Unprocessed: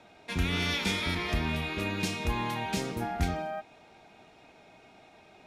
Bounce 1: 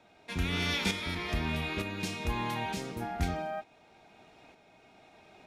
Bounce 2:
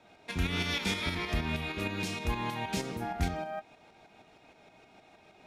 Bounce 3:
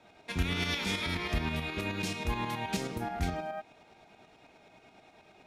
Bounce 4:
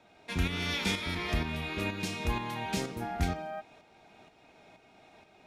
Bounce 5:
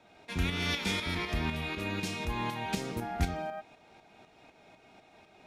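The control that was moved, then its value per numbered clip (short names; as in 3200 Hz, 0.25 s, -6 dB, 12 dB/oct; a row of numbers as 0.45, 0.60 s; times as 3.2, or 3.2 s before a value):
tremolo, rate: 1.1, 6.4, 9.4, 2.1, 4 Hz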